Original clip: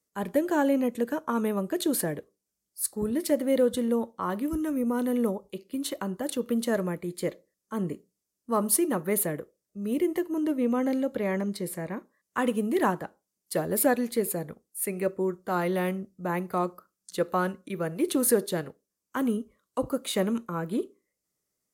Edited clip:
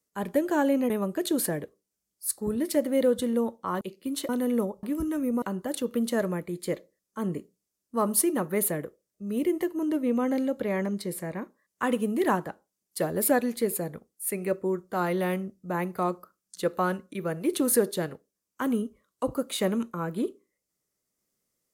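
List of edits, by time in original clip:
0:00.90–0:01.45: remove
0:04.36–0:04.95: swap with 0:05.49–0:05.97

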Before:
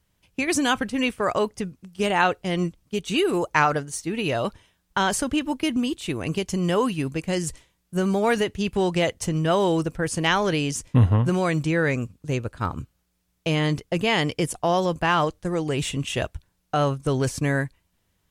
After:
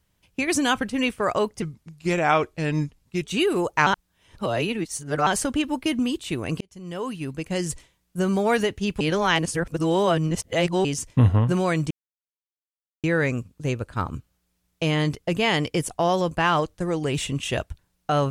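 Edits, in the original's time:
0:01.62–0:03.01: play speed 86%
0:03.64–0:05.04: reverse
0:06.38–0:07.48: fade in
0:08.78–0:10.62: reverse
0:11.68: splice in silence 1.13 s

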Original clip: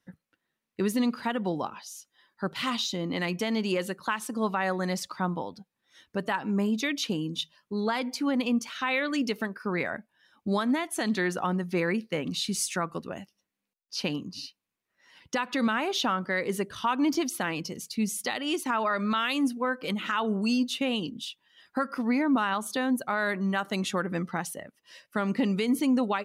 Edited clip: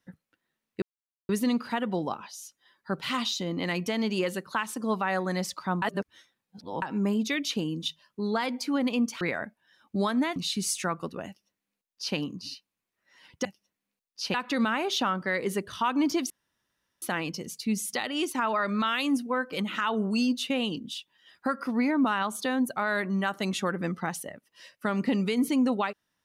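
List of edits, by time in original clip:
0:00.82: splice in silence 0.47 s
0:05.35–0:06.35: reverse
0:08.74–0:09.73: remove
0:10.88–0:12.28: remove
0:13.19–0:14.08: duplicate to 0:15.37
0:17.33: splice in room tone 0.72 s

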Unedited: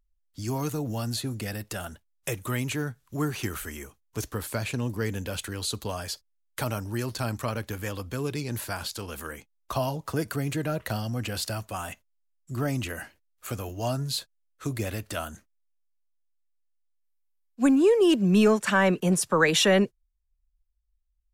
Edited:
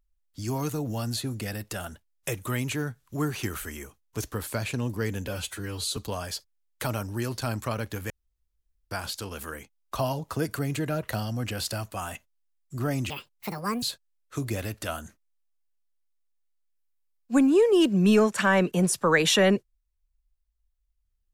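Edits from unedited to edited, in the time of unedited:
0:05.28–0:05.74: time-stretch 1.5×
0:07.87–0:08.68: fill with room tone
0:12.87–0:14.11: play speed 171%

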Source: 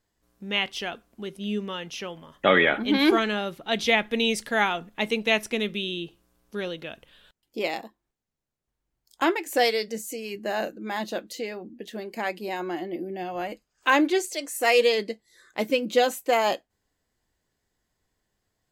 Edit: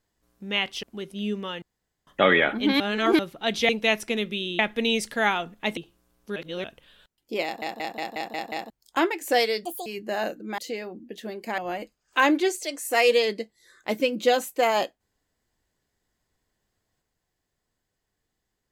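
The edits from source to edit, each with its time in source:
0:00.83–0:01.08: remove
0:01.87–0:02.32: fill with room tone
0:03.05–0:03.44: reverse
0:05.12–0:06.02: move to 0:03.94
0:06.61–0:06.89: reverse
0:07.69: stutter in place 0.18 s, 7 plays
0:09.90–0:10.23: play speed 156%
0:10.95–0:11.28: remove
0:12.28–0:13.28: remove

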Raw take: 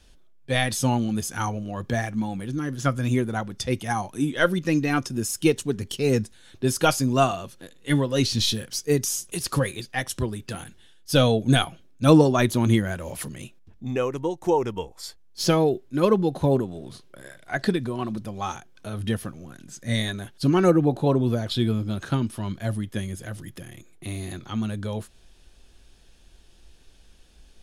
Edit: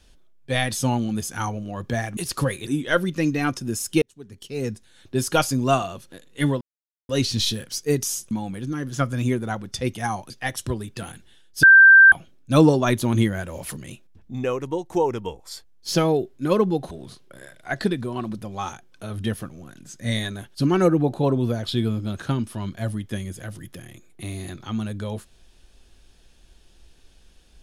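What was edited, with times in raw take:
0:02.17–0:04.16: swap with 0:09.32–0:09.82
0:05.51–0:06.74: fade in
0:08.10: splice in silence 0.48 s
0:11.15–0:11.64: beep over 1,570 Hz −6.5 dBFS
0:16.43–0:16.74: remove

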